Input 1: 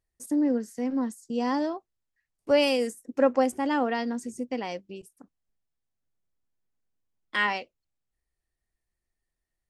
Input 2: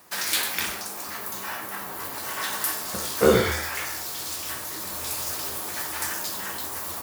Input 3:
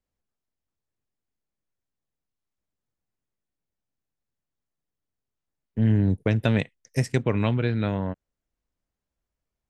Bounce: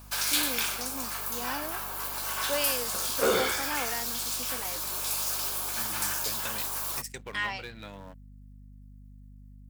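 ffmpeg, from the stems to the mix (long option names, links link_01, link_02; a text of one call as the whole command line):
ffmpeg -i stem1.wav -i stem2.wav -i stem3.wav -filter_complex "[0:a]highshelf=frequency=6000:gain=10.5,volume=-5dB[link_01];[1:a]bandreject=frequency=1900:width=5.2,volume=0.5dB[link_02];[2:a]aeval=exprs='if(lt(val(0),0),0.447*val(0),val(0))':channel_layout=same,aemphasis=mode=production:type=75fm,acompressor=threshold=-25dB:ratio=6,volume=-4.5dB[link_03];[link_01][link_02][link_03]amix=inputs=3:normalize=0,highpass=frequency=810:poles=1,asoftclip=type=tanh:threshold=-16.5dB,aeval=exprs='val(0)+0.00398*(sin(2*PI*50*n/s)+sin(2*PI*2*50*n/s)/2+sin(2*PI*3*50*n/s)/3+sin(2*PI*4*50*n/s)/4+sin(2*PI*5*50*n/s)/5)':channel_layout=same" out.wav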